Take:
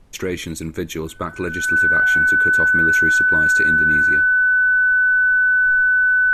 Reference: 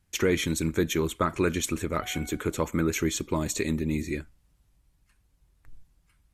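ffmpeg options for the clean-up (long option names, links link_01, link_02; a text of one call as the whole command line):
ffmpeg -i in.wav -af "bandreject=frequency=1500:width=30,agate=range=-21dB:threshold=-22dB,asetnsamples=nb_out_samples=441:pad=0,asendcmd='5.45 volume volume -7dB',volume=0dB" out.wav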